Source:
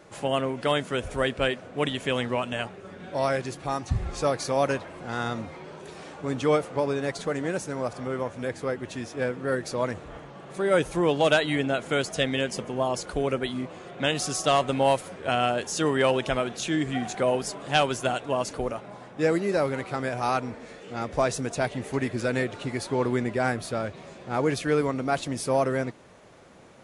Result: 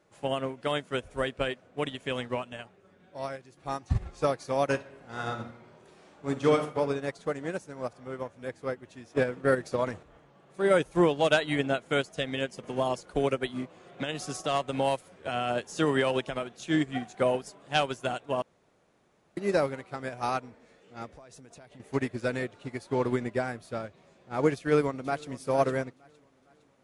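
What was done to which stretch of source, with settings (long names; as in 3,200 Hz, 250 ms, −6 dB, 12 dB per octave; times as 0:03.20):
0:02.40–0:03.57: fade out, to −6.5 dB
0:04.69–0:06.74: thrown reverb, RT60 1.2 s, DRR 3.5 dB
0:09.10–0:10.03: transient designer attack +11 dB, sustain +6 dB
0:12.63–0:16.43: multiband upward and downward compressor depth 40%
0:18.42–0:19.37: fill with room tone
0:21.11–0:21.80: downward compressor 12 to 1, threshold −31 dBFS
0:24.58–0:25.32: delay throw 460 ms, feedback 55%, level −13 dB
whole clip: brickwall limiter −15.5 dBFS; expander for the loud parts 2.5 to 1, over −34 dBFS; level +3.5 dB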